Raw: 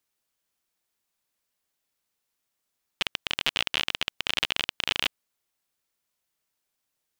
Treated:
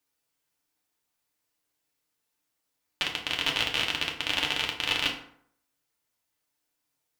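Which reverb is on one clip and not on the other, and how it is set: FDN reverb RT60 0.64 s, low-frequency decay 1×, high-frequency decay 0.6×, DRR -1.5 dB; gain -2.5 dB

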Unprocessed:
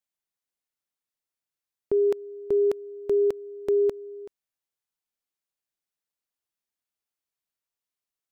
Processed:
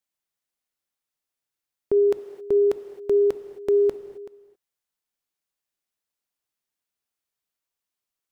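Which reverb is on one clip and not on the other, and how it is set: non-linear reverb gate 0.29 s flat, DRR 10.5 dB; gain +2.5 dB

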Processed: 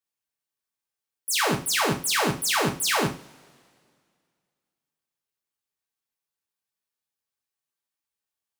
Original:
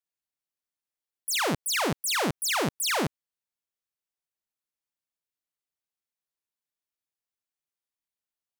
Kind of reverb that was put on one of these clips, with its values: two-slope reverb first 0.32 s, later 2.2 s, from -27 dB, DRR -0.5 dB

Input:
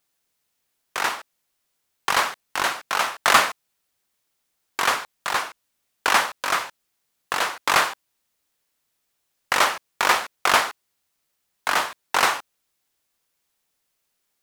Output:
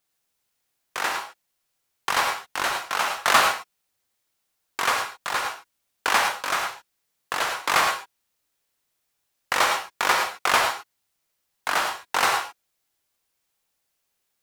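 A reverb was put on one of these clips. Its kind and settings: non-linear reverb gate 0.13 s rising, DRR 3 dB; gain -3 dB

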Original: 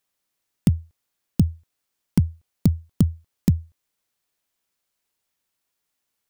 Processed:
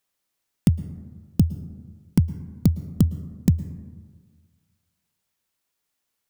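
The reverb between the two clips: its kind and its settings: plate-style reverb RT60 1.6 s, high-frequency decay 0.3×, pre-delay 0.1 s, DRR 15 dB

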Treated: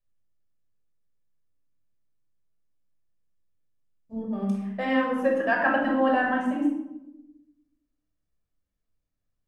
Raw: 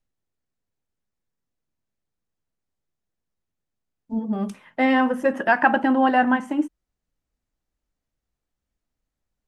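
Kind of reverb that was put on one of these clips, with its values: shoebox room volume 3100 m³, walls furnished, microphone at 5.8 m; gain -9.5 dB

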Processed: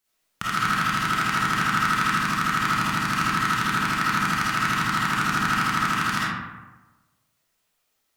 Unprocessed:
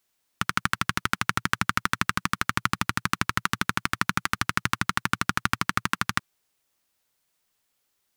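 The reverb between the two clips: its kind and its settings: digital reverb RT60 1.2 s, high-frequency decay 0.5×, pre-delay 10 ms, DRR -9 dB; gain -5.5 dB

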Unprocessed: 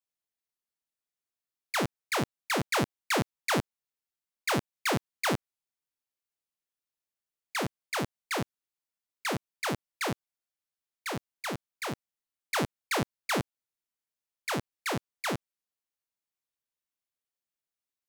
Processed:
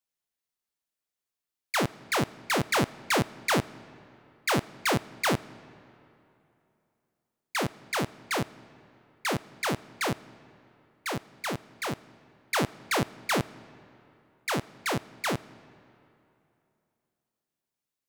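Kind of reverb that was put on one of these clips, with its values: digital reverb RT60 2.9 s, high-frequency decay 0.7×, pre-delay 10 ms, DRR 19 dB; gain +2.5 dB

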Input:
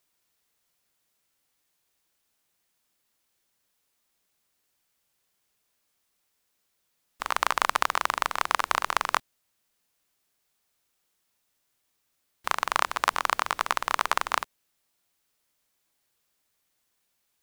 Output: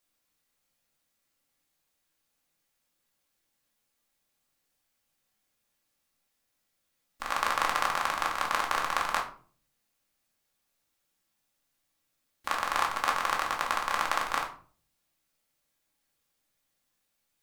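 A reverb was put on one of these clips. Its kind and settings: shoebox room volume 360 m³, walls furnished, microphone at 2.3 m; gain -6 dB

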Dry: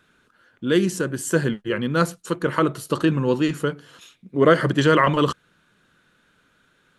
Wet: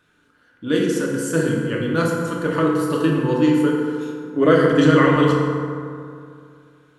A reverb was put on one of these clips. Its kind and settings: FDN reverb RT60 2.4 s, low-frequency decay 1.05×, high-frequency decay 0.45×, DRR -2.5 dB; gain -3.5 dB

